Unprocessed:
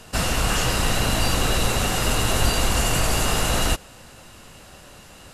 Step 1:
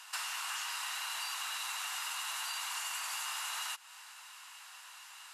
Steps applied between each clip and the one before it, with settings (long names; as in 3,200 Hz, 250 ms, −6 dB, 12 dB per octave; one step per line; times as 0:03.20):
elliptic high-pass filter 920 Hz, stop band 70 dB
downward compressor 5 to 1, threshold −34 dBFS, peak gain reduction 10.5 dB
level −3 dB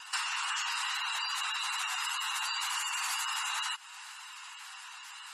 gate on every frequency bin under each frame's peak −15 dB strong
tape wow and flutter 25 cents
level +6.5 dB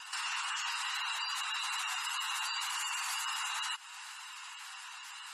brickwall limiter −27 dBFS, peak gain reduction 7 dB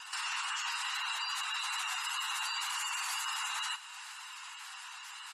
repeating echo 61 ms, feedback 60%, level −16 dB